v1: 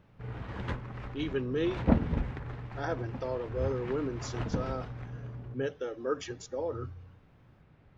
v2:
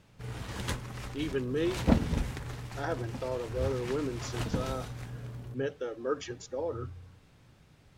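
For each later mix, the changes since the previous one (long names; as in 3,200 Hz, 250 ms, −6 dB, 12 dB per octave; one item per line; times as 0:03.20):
background: remove low-pass filter 2,000 Hz 12 dB per octave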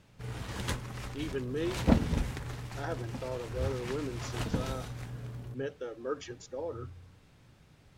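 speech −3.5 dB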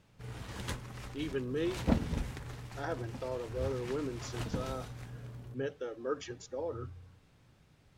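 background −4.5 dB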